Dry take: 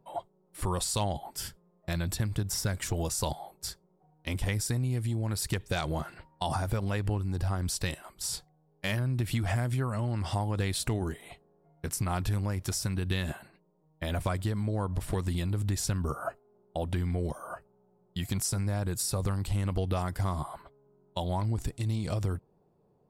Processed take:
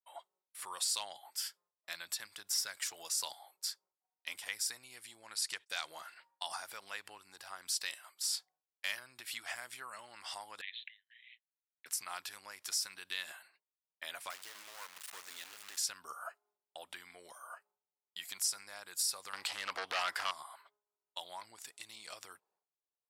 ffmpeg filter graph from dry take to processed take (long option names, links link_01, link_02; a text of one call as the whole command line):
ffmpeg -i in.wav -filter_complex "[0:a]asettb=1/sr,asplit=3[link_01][link_02][link_03];[link_01]atrim=end=5.234[link_04];[link_02]atrim=start=5.23:end=5.7,asetpts=PTS-STARTPTS,afade=type=in:duration=0.004:curve=qsin,afade=type=out:start_time=0.466:duration=0.004:curve=qsin,lowpass=frequency=11000:width=0.5412,lowpass=frequency=11000:width=1.3066,agate=range=-26dB:threshold=-47dB:ratio=16:release=100:detection=peak[link_05];[link_03]atrim=start=5.696[link_06];[link_04][link_05]acrossfade=duration=0.004:curve1=hsin:curve2=qsin[link_07];[link_07][link_06]acrossfade=duration=0.004:curve1=qsin:curve2=hsin,asettb=1/sr,asplit=3[link_08][link_09][link_10];[link_08]atrim=end=10.614[link_11];[link_09]atrim=start=10.61:end=11.86,asetpts=PTS-STARTPTS,afade=type=in:duration=0.004:curve=qsin,afade=type=out:start_time=1.246:duration=0.004:curve=qsin,asuperpass=centerf=2600:order=20:qfactor=1.2,tremolo=f=120:d=0.571[link_12];[link_10]atrim=start=11.856[link_13];[link_11][link_12]acrossfade=duration=0.004:curve1=hsin:curve2=qsin[link_14];[link_14][link_13]acrossfade=duration=0.004:curve1=qsin:curve2=hsin,asettb=1/sr,asplit=3[link_15][link_16][link_17];[link_15]atrim=end=14.304[link_18];[link_16]atrim=start=14.3:end=15.78,asetpts=PTS-STARTPTS,afade=type=in:duration=0.004:curve=qsin,afade=type=out:start_time=1.476:duration=0.004:curve=qsin,lowpass=10000,acrusher=bits=4:dc=4:mix=0:aa=0.000001[link_19];[link_17]atrim=start=15.776[link_20];[link_18][link_19]acrossfade=duration=0.004:curve1=hsin:curve2=qsin[link_21];[link_21][link_20]acrossfade=duration=0.004:curve1=qsin:curve2=hsin,asettb=1/sr,asplit=3[link_22][link_23][link_24];[link_22]atrim=end=19.334[link_25];[link_23]atrim=start=19.33:end=20.31,asetpts=PTS-STARTPTS,afade=type=in:duration=0.004:curve=qsin,afade=type=out:start_time=0.976:duration=0.004:curve=qsin,asplit=2[link_26][link_27];[link_27]highpass=frequency=720:poles=1,volume=13dB,asoftclip=type=tanh:threshold=-18dB[link_28];[link_26][link_28]amix=inputs=2:normalize=0,lowpass=frequency=1500:poles=1,volume=-6dB,aeval=exprs='0.1*sin(PI/2*2.24*val(0)/0.1)':channel_layout=same[link_29];[link_24]atrim=start=20.306[link_30];[link_25][link_29]acrossfade=duration=0.004:curve1=hsin:curve2=qsin[link_31];[link_31][link_30]acrossfade=duration=0.004:curve1=qsin:curve2=hsin,agate=range=-33dB:threshold=-55dB:ratio=3:detection=peak,highpass=1400,adynamicequalizer=threshold=0.00282:dfrequency=5000:dqfactor=3.6:tfrequency=5000:tqfactor=3.6:attack=5:release=100:ratio=0.375:range=2.5:mode=boostabove:tftype=bell,volume=-2.5dB" out.wav